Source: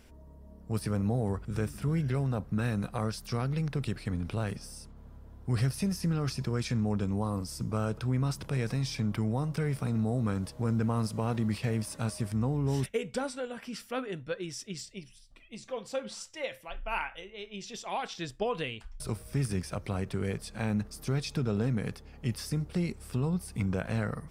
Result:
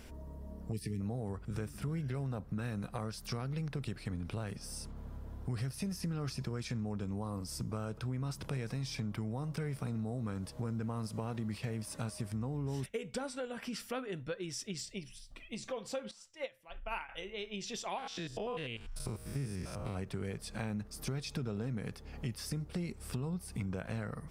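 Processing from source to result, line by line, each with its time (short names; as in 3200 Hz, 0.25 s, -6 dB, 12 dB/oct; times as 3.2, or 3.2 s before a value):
0.72–1.01 spectral gain 470–1700 Hz -27 dB
16.11–17.09 upward expander 2.5:1, over -41 dBFS
17.98–19.97 stepped spectrum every 0.1 s
whole clip: compressor 3:1, threshold -44 dBFS; gain +5 dB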